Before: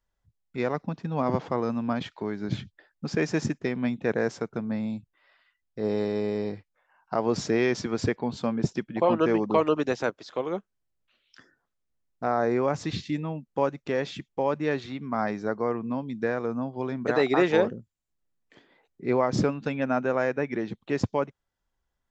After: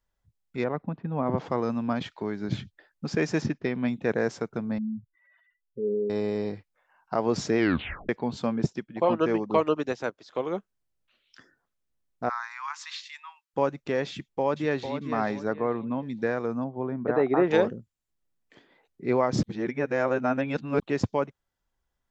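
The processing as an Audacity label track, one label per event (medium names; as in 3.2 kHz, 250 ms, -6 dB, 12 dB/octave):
0.640000	1.380000	distance through air 490 m
3.420000	3.880000	low-pass 5.1 kHz 24 dB/octave
4.780000	6.100000	spectral contrast enhancement exponent 2.7
7.580000	7.580000	tape stop 0.51 s
8.660000	10.350000	upward expansion, over -31 dBFS
12.290000	13.540000	steep high-pass 930 Hz 72 dB/octave
14.110000	14.940000	echo throw 450 ms, feedback 30%, level -8.5 dB
15.530000	16.030000	steep low-pass 4 kHz 72 dB/octave
16.640000	17.510000	low-pass 1.3 kHz
19.430000	20.800000	reverse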